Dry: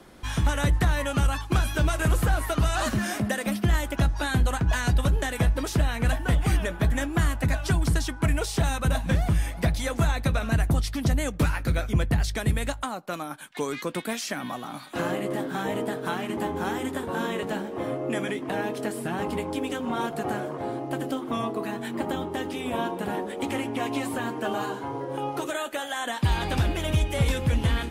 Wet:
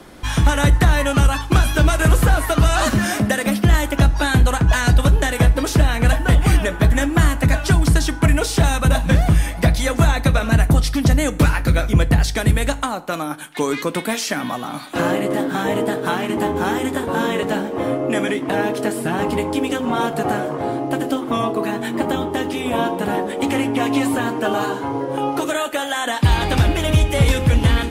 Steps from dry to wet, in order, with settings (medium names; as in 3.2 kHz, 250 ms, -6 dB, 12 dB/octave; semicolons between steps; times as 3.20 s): FDN reverb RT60 0.66 s, low-frequency decay 0.9×, high-frequency decay 0.75×, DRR 13.5 dB; trim +8.5 dB